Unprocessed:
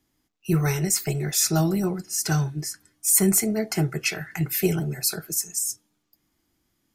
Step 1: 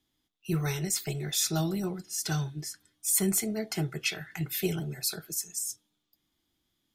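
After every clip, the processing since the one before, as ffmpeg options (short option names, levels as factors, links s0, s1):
-af "equalizer=f=3500:t=o:w=0.43:g=12.5,volume=0.422"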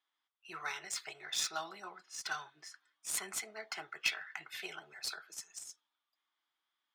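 -af "highpass=f=1100:t=q:w=1.8,adynamicsmooth=sensitivity=2.5:basefreq=3500,volume=0.75"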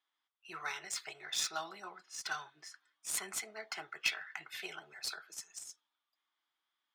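-af anull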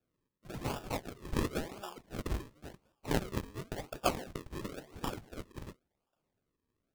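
-af "acrusher=samples=42:mix=1:aa=0.000001:lfo=1:lforange=42:lforate=0.94,volume=1.5"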